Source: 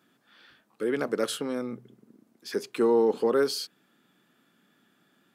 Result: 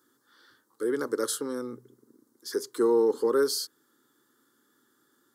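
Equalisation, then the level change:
high-pass filter 120 Hz
bass and treble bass +5 dB, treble +7 dB
phaser with its sweep stopped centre 680 Hz, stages 6
0.0 dB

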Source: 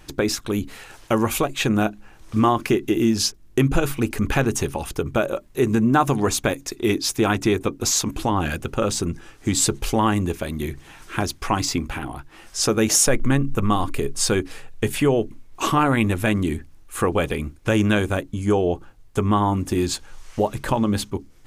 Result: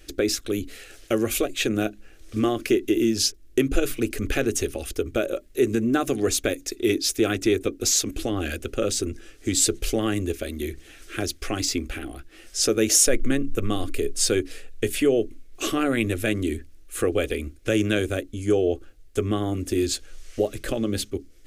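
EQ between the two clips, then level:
phaser with its sweep stopped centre 390 Hz, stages 4
0.0 dB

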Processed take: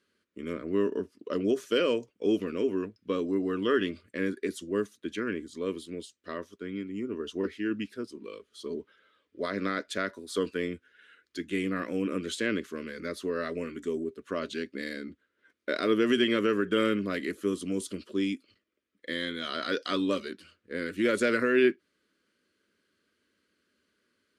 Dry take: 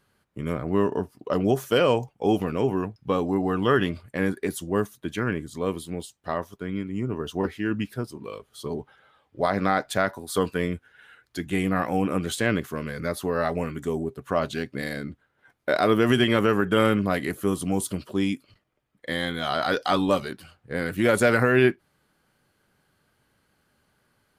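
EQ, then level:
band-pass filter 120–7,000 Hz
phaser with its sweep stopped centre 330 Hz, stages 4
−2.5 dB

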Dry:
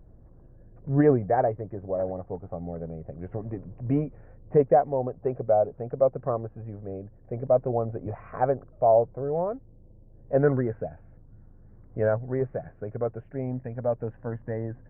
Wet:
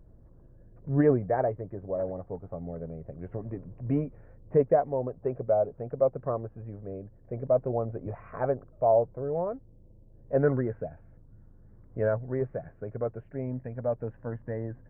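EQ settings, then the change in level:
notch filter 760 Hz, Q 13
−2.5 dB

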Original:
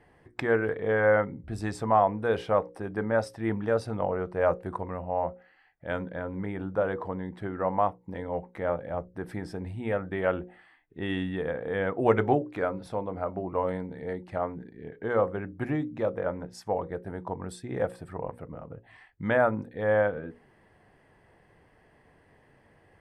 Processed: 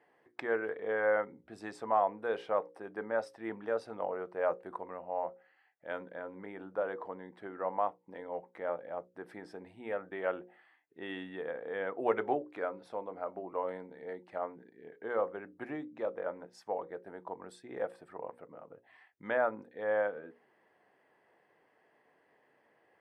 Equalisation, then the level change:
high-pass filter 350 Hz 12 dB per octave
high-shelf EQ 5,700 Hz −9.5 dB
−6.0 dB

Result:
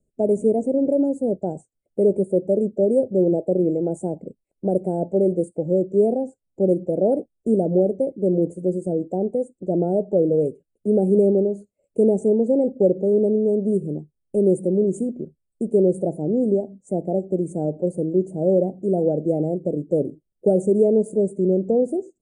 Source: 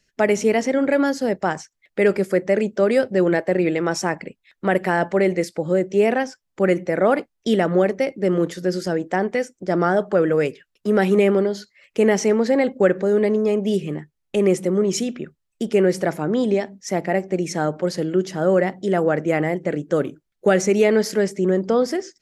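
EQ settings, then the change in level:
inverse Chebyshev band-stop filter 1,100–5,700 Hz, stop band 40 dB
linear-phase brick-wall low-pass 9,900 Hz
0.0 dB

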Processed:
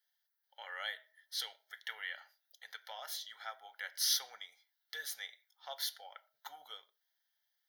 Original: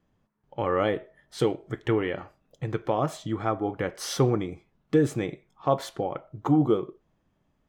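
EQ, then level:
high-pass filter 1,200 Hz 12 dB per octave
first difference
phaser with its sweep stopped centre 1,700 Hz, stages 8
+9.0 dB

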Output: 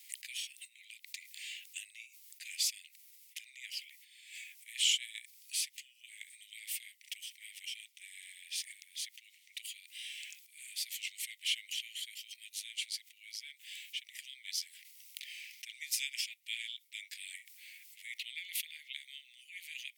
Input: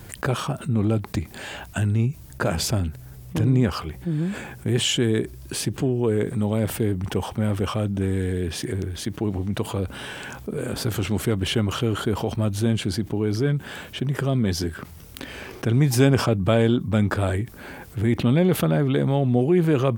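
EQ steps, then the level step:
Butterworth high-pass 2,000 Hz 96 dB per octave
−5.5 dB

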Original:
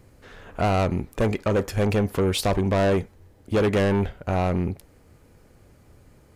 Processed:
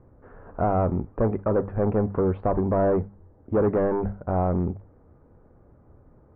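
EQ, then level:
inverse Chebyshev low-pass filter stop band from 5,500 Hz, stop band 70 dB
mains-hum notches 50/100/150/200 Hz
0.0 dB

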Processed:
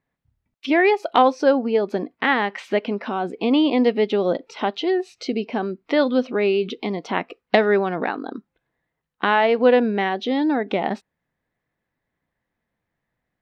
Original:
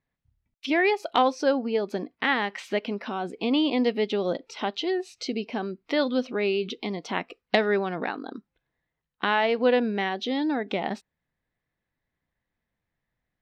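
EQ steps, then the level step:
low-shelf EQ 100 Hz −9.5 dB
high-shelf EQ 3,100 Hz −10.5 dB
+7.0 dB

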